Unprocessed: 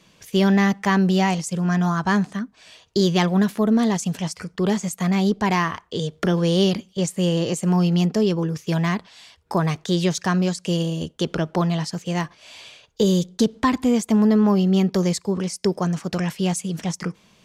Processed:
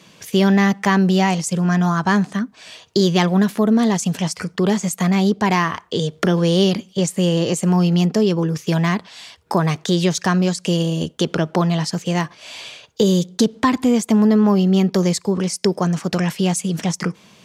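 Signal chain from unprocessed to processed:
in parallel at +3 dB: downward compressor, threshold −27 dBFS, peak gain reduction 13 dB
on the sum: high-pass filter 99 Hz

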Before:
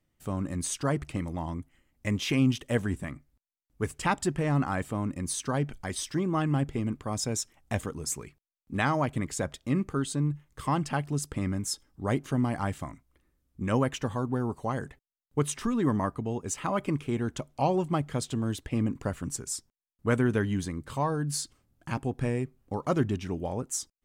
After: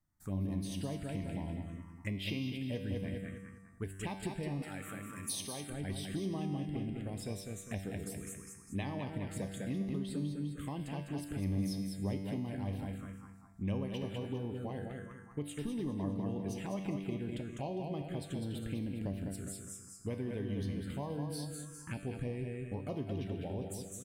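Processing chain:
repeating echo 202 ms, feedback 43%, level −5.5 dB
downward compressor 6 to 1, threshold −28 dBFS, peak gain reduction 9.5 dB
tuned comb filter 97 Hz, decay 1.4 s, harmonics all, mix 80%
0:04.62–0:05.70: spectral tilt +3 dB per octave
phaser swept by the level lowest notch 470 Hz, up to 1,400 Hz, full sweep at −39.5 dBFS
level +7 dB

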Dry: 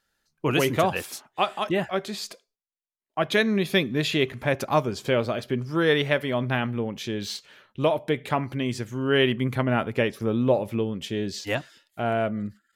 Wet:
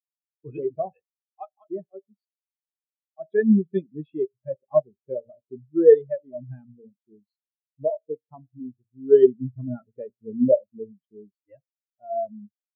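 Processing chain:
hum removal 58.03 Hz, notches 13
every bin expanded away from the loudest bin 4 to 1
level +5 dB

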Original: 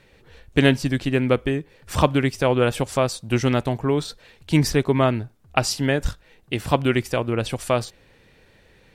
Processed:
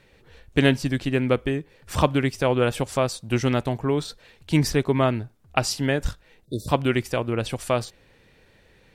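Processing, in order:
time-frequency box erased 0:06.45–0:06.68, 630–3,500 Hz
level −2 dB

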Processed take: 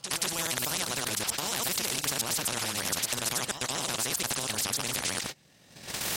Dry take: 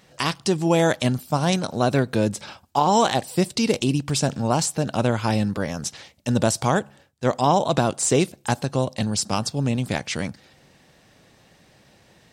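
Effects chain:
delay that plays each chunk backwards 130 ms, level −2.5 dB
camcorder AGC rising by 9.6 dB per second
low-shelf EQ 240 Hz +11.5 dB
tempo change 2×
high-shelf EQ 2,500 Hz +11.5 dB
noise gate −26 dBFS, range −31 dB
high-pass filter 190 Hz 6 dB per octave
brickwall limiter −9 dBFS, peak gain reduction 9 dB
echo ahead of the sound 177 ms −21 dB
every bin compressed towards the loudest bin 4 to 1
level −3 dB

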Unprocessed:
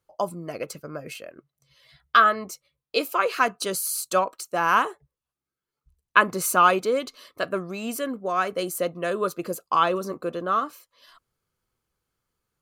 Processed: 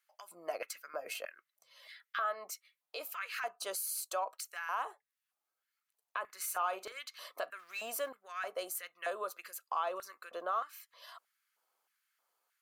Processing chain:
0:07.59–0:08.09: mu-law and A-law mismatch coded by mu
high-pass filter 150 Hz
parametric band 14,000 Hz +5 dB 0.63 octaves
downward compressor 3 to 1, threshold −37 dBFS, peak gain reduction 19 dB
brickwall limiter −27.5 dBFS, peak gain reduction 10.5 dB
auto-filter high-pass square 1.6 Hz 710–1,800 Hz
0:06.26–0:06.99: double-tracking delay 42 ms −14 dB
level −1 dB

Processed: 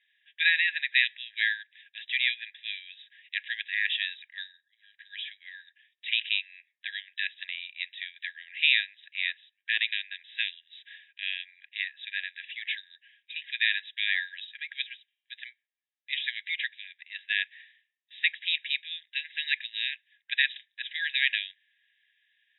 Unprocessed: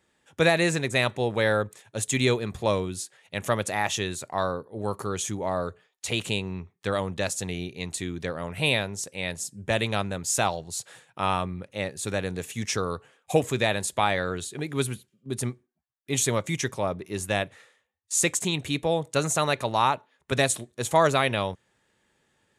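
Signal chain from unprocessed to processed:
linear-phase brick-wall band-pass 1,600–3,900 Hz
level +3.5 dB

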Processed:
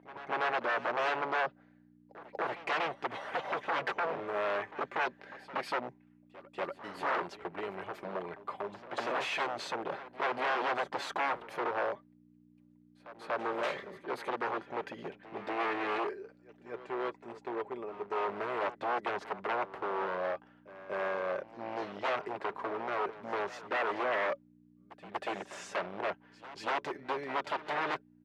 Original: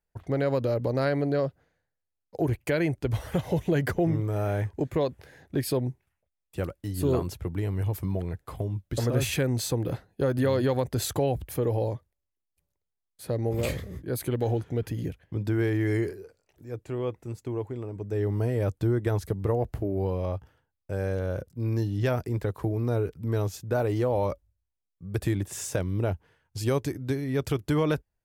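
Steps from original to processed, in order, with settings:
comb filter 5.1 ms, depth 50%
mains hum 60 Hz, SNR 13 dB
wave folding −26 dBFS
band-pass filter 580–2,500 Hz
backwards echo 239 ms −16 dB
level +3 dB

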